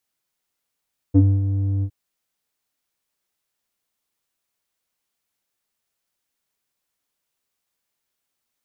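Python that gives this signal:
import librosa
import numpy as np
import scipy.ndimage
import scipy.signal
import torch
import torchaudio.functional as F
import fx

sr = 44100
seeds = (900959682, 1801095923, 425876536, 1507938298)

y = fx.sub_voice(sr, note=43, wave='square', cutoff_hz=200.0, q=3.8, env_oct=1.0, env_s=0.09, attack_ms=19.0, decay_s=0.25, sustain_db=-8.5, release_s=0.07, note_s=0.69, slope=12)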